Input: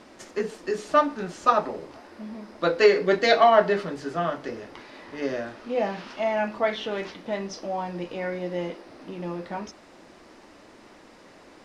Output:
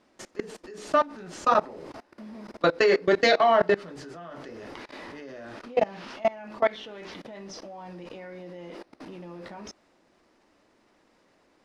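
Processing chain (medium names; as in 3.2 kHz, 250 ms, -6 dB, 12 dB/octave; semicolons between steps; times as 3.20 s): level held to a coarse grid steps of 23 dB; trim +4.5 dB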